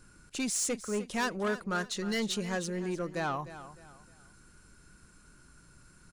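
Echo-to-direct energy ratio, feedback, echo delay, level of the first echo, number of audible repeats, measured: -13.5 dB, 33%, 305 ms, -14.0 dB, 3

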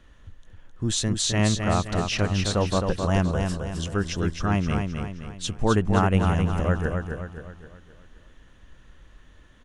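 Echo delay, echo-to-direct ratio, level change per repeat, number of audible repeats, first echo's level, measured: 262 ms, -4.0 dB, -7.0 dB, 5, -5.0 dB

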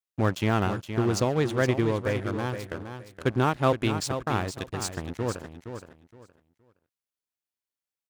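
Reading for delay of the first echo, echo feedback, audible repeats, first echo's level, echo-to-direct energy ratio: 468 ms, 23%, 3, -9.0 dB, -9.0 dB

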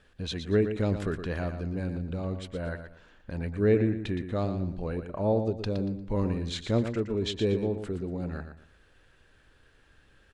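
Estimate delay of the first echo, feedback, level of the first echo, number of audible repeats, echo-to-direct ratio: 117 ms, 29%, -9.0 dB, 3, -8.5 dB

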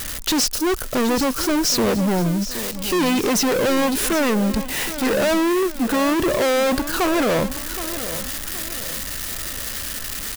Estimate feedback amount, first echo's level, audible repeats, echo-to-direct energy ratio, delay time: 39%, -12.5 dB, 3, -12.0 dB, 770 ms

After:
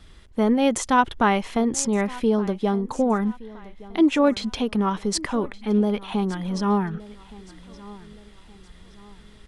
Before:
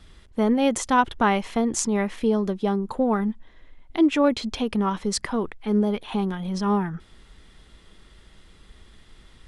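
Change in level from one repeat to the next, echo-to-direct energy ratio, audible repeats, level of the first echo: -8.0 dB, -19.5 dB, 2, -20.0 dB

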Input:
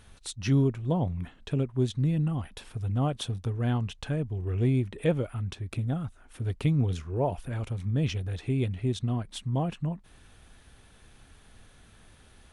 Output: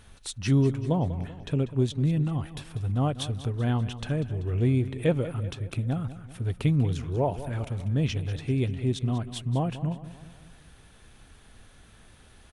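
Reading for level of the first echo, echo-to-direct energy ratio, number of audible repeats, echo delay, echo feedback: -14.0 dB, -12.5 dB, 4, 193 ms, 51%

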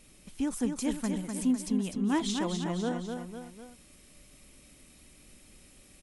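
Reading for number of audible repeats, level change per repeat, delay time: 3, -5.5 dB, 251 ms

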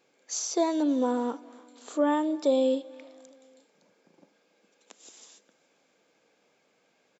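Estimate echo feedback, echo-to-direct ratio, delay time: 54%, -22.5 dB, 284 ms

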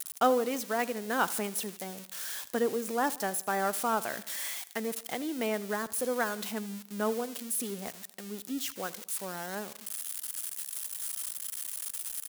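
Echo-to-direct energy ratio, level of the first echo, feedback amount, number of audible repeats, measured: -17.5 dB, -19.0 dB, 53%, 3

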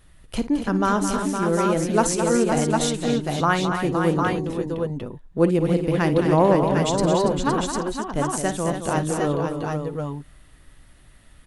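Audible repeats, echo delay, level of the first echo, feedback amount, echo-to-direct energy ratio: 5, 54 ms, -14.0 dB, no regular repeats, -0.5 dB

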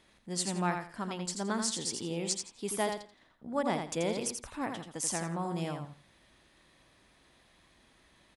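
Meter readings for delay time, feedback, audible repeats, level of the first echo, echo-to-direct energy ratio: 84 ms, 23%, 3, -6.0 dB, -6.0 dB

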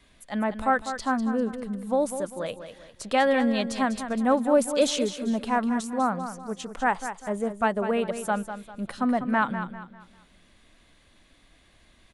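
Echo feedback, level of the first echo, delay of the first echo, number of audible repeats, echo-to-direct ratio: 35%, -10.0 dB, 198 ms, 3, -9.5 dB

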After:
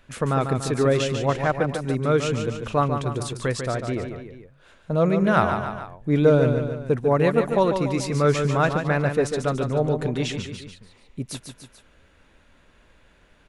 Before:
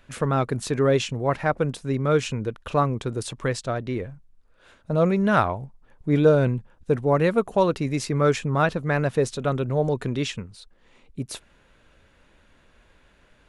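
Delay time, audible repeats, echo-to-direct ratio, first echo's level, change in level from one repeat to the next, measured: 145 ms, 3, -5.5 dB, -7.0 dB, -5.0 dB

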